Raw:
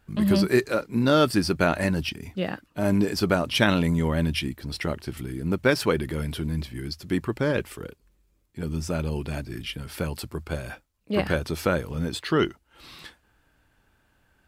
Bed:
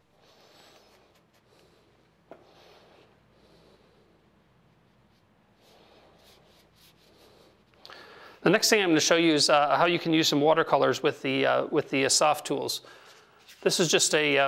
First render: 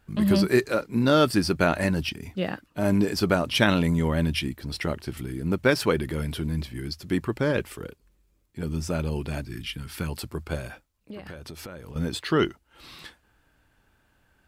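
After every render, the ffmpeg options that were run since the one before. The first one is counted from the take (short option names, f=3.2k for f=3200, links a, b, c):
-filter_complex "[0:a]asettb=1/sr,asplit=3[a][b][c];[a]atrim=end=9.464[d];[b]atrim=start=9.46:end=10.09,asetpts=PTS-STARTPTS,afade=t=in:d=0.004:c=qsin,afade=t=out:st=0.626:d=0.004:c=qsin,equalizer=f=570:t=o:w=0.89:g=-11[e];[c]atrim=start=10.086[f];[d][e]acrossfade=d=0.004:c1=hsin:c2=qsin[g];[g][f]acrossfade=d=0.004:c1=qsin:c2=hsin,asettb=1/sr,asplit=3[h][i][j];[h]atrim=end=10.674[k];[i]atrim=start=10.67:end=11.96,asetpts=PTS-STARTPTS,afade=t=in:d=0.004:c=qsin,afade=t=out:st=1.286:d=0.004:c=qsin,acompressor=threshold=-36dB:ratio=10:attack=3.2:release=140:knee=1:detection=peak[l];[j]atrim=start=11.956[m];[k][l]acrossfade=d=0.004:c1=hsin:c2=qsin[n];[n][m]acrossfade=d=0.004:c1=qsin:c2=hsin"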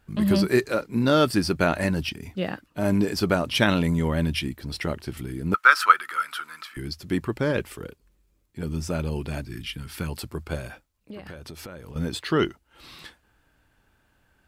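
-filter_complex "[0:a]asettb=1/sr,asplit=3[a][b][c];[a]atrim=end=5.544[d];[b]atrim=start=5.54:end=6.77,asetpts=PTS-STARTPTS,afade=t=in:d=0.004:c=qsin,afade=t=out:st=1.226:d=0.004:c=qsin,highpass=f=1.3k:t=q:w=14[e];[c]atrim=start=6.766[f];[d][e]acrossfade=d=0.004:c1=hsin:c2=qsin[g];[g][f]acrossfade=d=0.004:c1=qsin:c2=hsin"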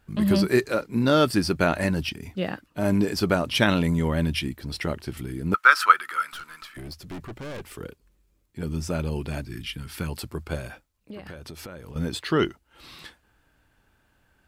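-filter_complex "[0:a]asettb=1/sr,asplit=3[a][b][c];[a]atrim=end=6.324[d];[b]atrim=start=6.32:end=7.75,asetpts=PTS-STARTPTS,afade=t=in:d=0.004:c=qsin,afade=t=out:st=1.426:d=0.004:c=qsin,aeval=exprs='(tanh(50.1*val(0)+0.35)-tanh(0.35))/50.1':c=same[e];[c]atrim=start=7.746[f];[d][e]acrossfade=d=0.004:c1=hsin:c2=qsin[g];[g][f]acrossfade=d=0.004:c1=qsin:c2=hsin"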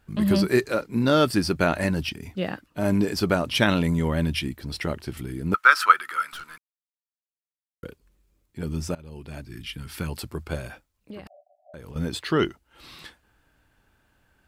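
-filter_complex "[0:a]asettb=1/sr,asplit=3[a][b][c];[a]atrim=end=11.274[d];[b]atrim=start=11.27:end=11.74,asetpts=PTS-STARTPTS,afade=t=in:d=0.004:c=qsin,afade=t=out:st=0.466:d=0.004:c=qsin,asuperpass=centerf=670:order=12:qfactor=3.5[e];[c]atrim=start=11.736[f];[d][e]acrossfade=d=0.004:c1=hsin:c2=qsin[g];[g][f]acrossfade=d=0.004:c1=qsin:c2=hsin,asplit=4[h][i][j][k];[h]atrim=end=6.58,asetpts=PTS-STARTPTS,afade=t=out:st=6.576:d=0.004:c=hsin[l];[i]atrim=start=6.58:end=7.83,asetpts=PTS-STARTPTS,volume=0[m];[j]atrim=start=7.83:end=8.95,asetpts=PTS-STARTPTS,afade=t=in:d=0.004:c=hsin,afade=t=out:st=1.116:d=0.004:c=hsin:silence=0.0707946[n];[k]atrim=start=8.95,asetpts=PTS-STARTPTS,afade=t=in:d=0.94:silence=0.0707946[o];[l][m][n][o]concat=n=4:v=0:a=1"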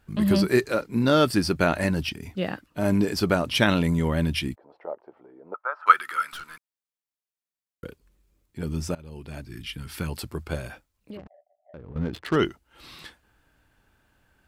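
-filter_complex "[0:a]asplit=3[a][b][c];[a]afade=t=out:st=4.54:d=0.02[d];[b]asuperpass=centerf=680:order=4:qfactor=1.5,afade=t=in:st=4.54:d=0.02,afade=t=out:st=5.86:d=0.02[e];[c]afade=t=in:st=5.86:d=0.02[f];[d][e][f]amix=inputs=3:normalize=0,asettb=1/sr,asplit=3[g][h][i];[g]atrim=end=11.174[j];[h]atrim=start=11.17:end=12.36,asetpts=PTS-STARTPTS,afade=t=in:d=0.004:c=qsin,afade=t=out:st=1.186:d=0.004:c=qsin,adynamicsmooth=sensitivity=4:basefreq=540[k];[i]atrim=start=12.356[l];[j][k]acrossfade=d=0.004:c1=hsin:c2=qsin[m];[m][l]acrossfade=d=0.004:c1=qsin:c2=hsin"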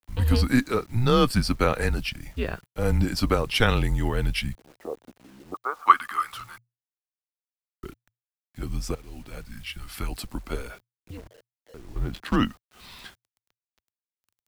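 -af "acrusher=bits=8:mix=0:aa=0.000001,afreqshift=-120"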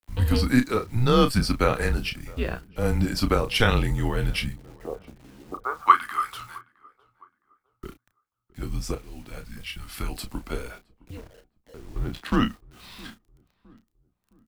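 -filter_complex "[0:a]asplit=2[a][b];[b]adelay=32,volume=-9dB[c];[a][c]amix=inputs=2:normalize=0,asplit=2[d][e];[e]adelay=663,lowpass=f=1.2k:p=1,volume=-23dB,asplit=2[f][g];[g]adelay=663,lowpass=f=1.2k:p=1,volume=0.42,asplit=2[h][i];[i]adelay=663,lowpass=f=1.2k:p=1,volume=0.42[j];[d][f][h][j]amix=inputs=4:normalize=0"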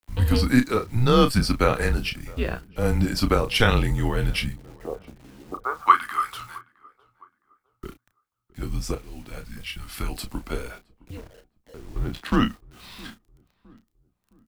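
-af "volume=1.5dB,alimiter=limit=-3dB:level=0:latency=1"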